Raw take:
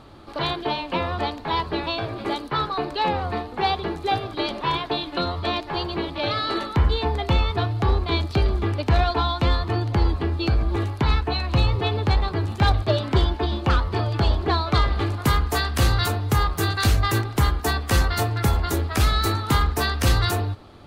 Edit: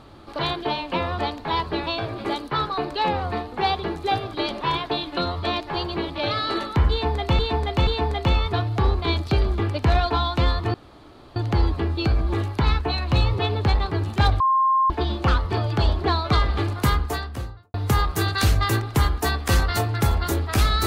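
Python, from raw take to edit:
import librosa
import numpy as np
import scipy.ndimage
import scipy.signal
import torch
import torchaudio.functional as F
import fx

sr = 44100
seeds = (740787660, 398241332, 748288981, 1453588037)

y = fx.studio_fade_out(x, sr, start_s=15.22, length_s=0.94)
y = fx.edit(y, sr, fx.repeat(start_s=6.91, length_s=0.48, count=3),
    fx.insert_room_tone(at_s=9.78, length_s=0.62),
    fx.bleep(start_s=12.82, length_s=0.5, hz=1060.0, db=-15.5), tone=tone)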